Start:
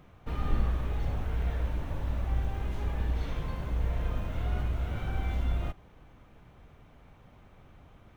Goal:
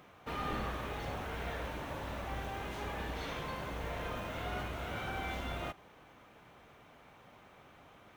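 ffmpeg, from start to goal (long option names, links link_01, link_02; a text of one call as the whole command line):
ffmpeg -i in.wav -af "highpass=frequency=530:poles=1,volume=4.5dB" out.wav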